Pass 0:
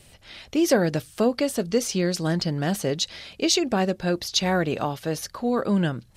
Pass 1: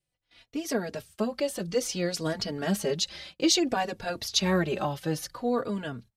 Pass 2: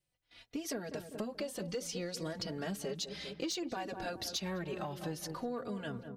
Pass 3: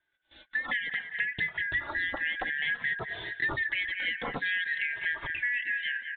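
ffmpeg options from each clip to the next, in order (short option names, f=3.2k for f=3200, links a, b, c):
-filter_complex "[0:a]agate=range=-24dB:threshold=-41dB:ratio=16:detection=peak,dynaudnorm=f=410:g=7:m=11.5dB,asplit=2[a][b];[b]adelay=3.5,afreqshift=-0.58[c];[a][c]amix=inputs=2:normalize=1,volume=-6dB"
-filter_complex "[0:a]asplit=2[a][b];[b]adelay=199,lowpass=f=900:p=1,volume=-11dB,asplit=2[c][d];[d]adelay=199,lowpass=f=900:p=1,volume=0.49,asplit=2[e][f];[f]adelay=199,lowpass=f=900:p=1,volume=0.49,asplit=2[g][h];[h]adelay=199,lowpass=f=900:p=1,volume=0.49,asplit=2[i][j];[j]adelay=199,lowpass=f=900:p=1,volume=0.49[k];[a][c][e][g][i][k]amix=inputs=6:normalize=0,asoftclip=type=tanh:threshold=-16dB,acompressor=threshold=-35dB:ratio=6,volume=-1dB"
-af "afftfilt=real='real(if(lt(b,272),68*(eq(floor(b/68),0)*3+eq(floor(b/68),1)*0+eq(floor(b/68),2)*1+eq(floor(b/68),3)*2)+mod(b,68),b),0)':imag='imag(if(lt(b,272),68*(eq(floor(b/68),0)*3+eq(floor(b/68),1)*0+eq(floor(b/68),2)*1+eq(floor(b/68),3)*2)+mod(b,68),b),0)':win_size=2048:overlap=0.75,aresample=8000,aresample=44100,volume=8dB"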